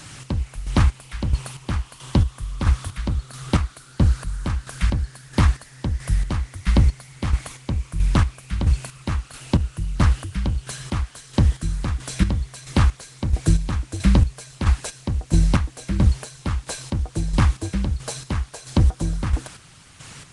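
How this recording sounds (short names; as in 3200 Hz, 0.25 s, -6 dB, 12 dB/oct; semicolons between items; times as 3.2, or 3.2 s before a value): a quantiser's noise floor 8-bit, dither triangular; chopped level 1.5 Hz, depth 60%, duty 35%; Nellymoser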